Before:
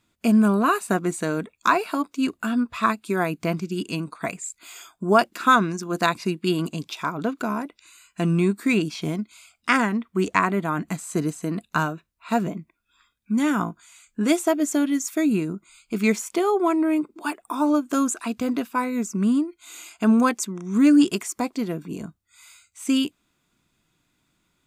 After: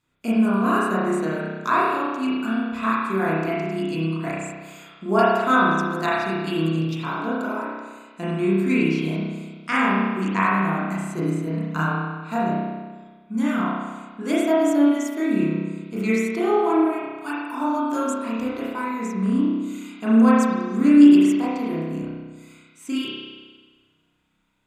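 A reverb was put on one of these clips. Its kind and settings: spring tank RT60 1.4 s, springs 31 ms, chirp 75 ms, DRR -8.5 dB; gain -8 dB

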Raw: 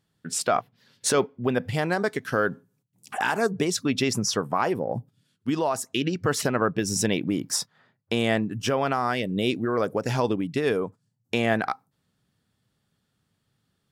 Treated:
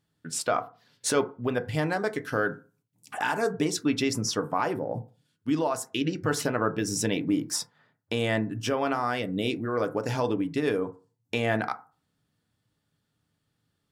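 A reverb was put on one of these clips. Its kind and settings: FDN reverb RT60 0.35 s, low-frequency decay 0.95×, high-frequency decay 0.35×, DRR 7.5 dB; gain -3.5 dB

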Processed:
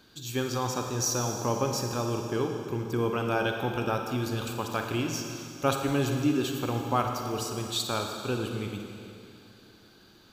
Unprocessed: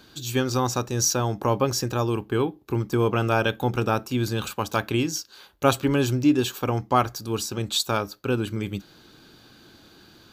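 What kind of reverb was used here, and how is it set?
Schroeder reverb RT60 2.6 s, DRR 3 dB; gain -6.5 dB

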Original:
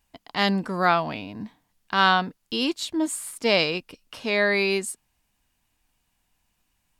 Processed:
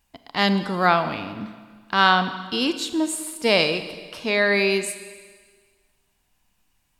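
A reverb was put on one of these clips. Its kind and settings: Schroeder reverb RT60 1.6 s, combs from 29 ms, DRR 10 dB; gain +2 dB

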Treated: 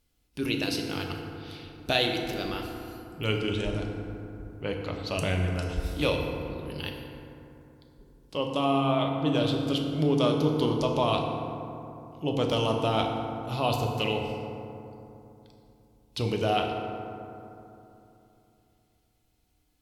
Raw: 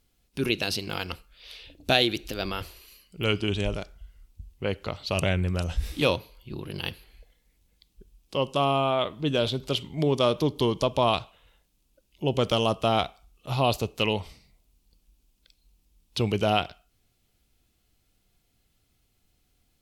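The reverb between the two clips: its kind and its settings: FDN reverb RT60 3 s, low-frequency decay 1.25×, high-frequency decay 0.4×, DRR 1 dB; gain -4.5 dB

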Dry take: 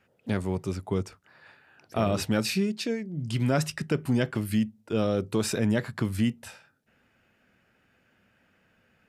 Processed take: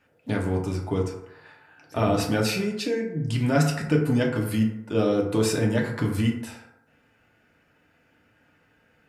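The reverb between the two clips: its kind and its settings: FDN reverb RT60 0.88 s, low-frequency decay 0.75×, high-frequency decay 0.4×, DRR -1 dB

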